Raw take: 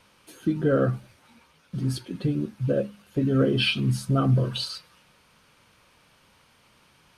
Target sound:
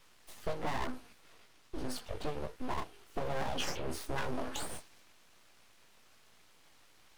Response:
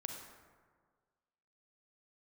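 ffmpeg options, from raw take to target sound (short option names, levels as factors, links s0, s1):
-filter_complex "[0:a]flanger=delay=16.5:depth=3.1:speed=1.1,aeval=exprs='abs(val(0))':c=same,acrossover=split=550|3200[s0][s1][s2];[s0]acompressor=threshold=0.0141:ratio=4[s3];[s1]acompressor=threshold=0.0112:ratio=4[s4];[s2]acompressor=threshold=0.00562:ratio=4[s5];[s3][s4][s5]amix=inputs=3:normalize=0,volume=1.19"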